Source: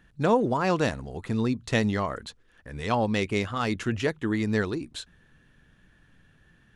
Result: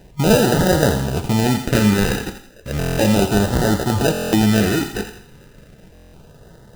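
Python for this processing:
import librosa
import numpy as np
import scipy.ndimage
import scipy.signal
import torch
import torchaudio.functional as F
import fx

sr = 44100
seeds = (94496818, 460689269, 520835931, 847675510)

p1 = fx.over_compress(x, sr, threshold_db=-31.0, ratio=-1.0)
p2 = x + (p1 * librosa.db_to_amplitude(-1.0))
p3 = fx.sample_hold(p2, sr, seeds[0], rate_hz=1100.0, jitter_pct=0)
p4 = fx.filter_lfo_notch(p3, sr, shape='sine', hz=0.34, low_hz=600.0, high_hz=2500.0, q=2.1)
p5 = p4 + fx.echo_thinned(p4, sr, ms=84, feedback_pct=35, hz=930.0, wet_db=-8.5, dry=0)
p6 = fx.rev_gated(p5, sr, seeds[1], gate_ms=240, shape='falling', drr_db=7.5)
p7 = fx.buffer_glitch(p6, sr, at_s=(2.78, 4.12, 5.93), block=1024, repeats=8)
y = p7 * librosa.db_to_amplitude(6.0)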